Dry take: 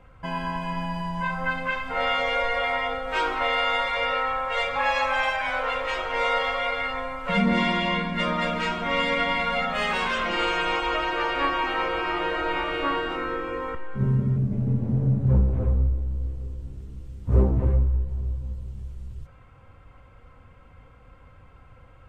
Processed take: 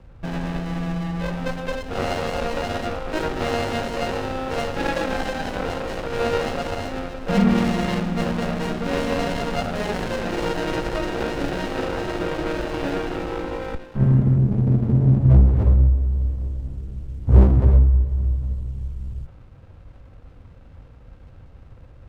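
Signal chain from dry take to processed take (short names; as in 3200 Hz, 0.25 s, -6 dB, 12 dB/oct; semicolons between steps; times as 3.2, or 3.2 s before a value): low shelf 270 Hz +4.5 dB; running maximum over 33 samples; gain +3 dB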